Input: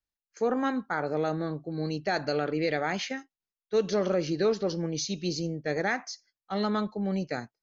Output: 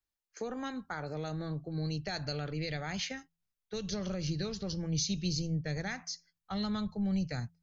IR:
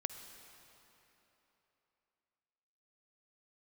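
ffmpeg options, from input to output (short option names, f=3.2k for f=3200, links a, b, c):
-filter_complex "[0:a]acrossover=split=150|3000[a][b][c];[b]acompressor=threshold=-38dB:ratio=4[d];[a][d][c]amix=inputs=3:normalize=0,bandreject=f=84.22:t=h:w=4,bandreject=f=168.44:t=h:w=4,asubboost=boost=6.5:cutoff=130"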